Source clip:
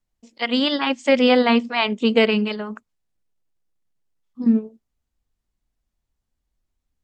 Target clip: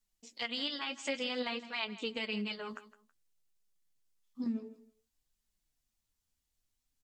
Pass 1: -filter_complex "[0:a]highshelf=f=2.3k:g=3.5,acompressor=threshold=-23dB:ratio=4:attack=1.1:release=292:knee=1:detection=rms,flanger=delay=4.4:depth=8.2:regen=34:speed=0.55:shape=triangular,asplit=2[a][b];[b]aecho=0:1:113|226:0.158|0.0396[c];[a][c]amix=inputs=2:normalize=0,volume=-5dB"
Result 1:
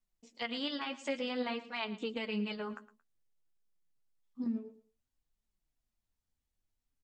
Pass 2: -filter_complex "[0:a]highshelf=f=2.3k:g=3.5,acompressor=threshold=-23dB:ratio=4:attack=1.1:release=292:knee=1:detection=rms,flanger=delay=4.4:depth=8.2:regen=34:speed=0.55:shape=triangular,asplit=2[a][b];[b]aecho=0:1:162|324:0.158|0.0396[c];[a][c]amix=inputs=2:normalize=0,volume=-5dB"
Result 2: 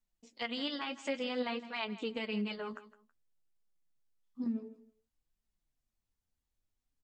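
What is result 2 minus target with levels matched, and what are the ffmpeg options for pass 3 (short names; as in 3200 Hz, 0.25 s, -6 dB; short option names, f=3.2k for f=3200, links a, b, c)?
4000 Hz band -3.0 dB
-filter_complex "[0:a]highshelf=f=2.3k:g=14,acompressor=threshold=-23dB:ratio=4:attack=1.1:release=292:knee=1:detection=rms,flanger=delay=4.4:depth=8.2:regen=34:speed=0.55:shape=triangular,asplit=2[a][b];[b]aecho=0:1:162|324:0.158|0.0396[c];[a][c]amix=inputs=2:normalize=0,volume=-5dB"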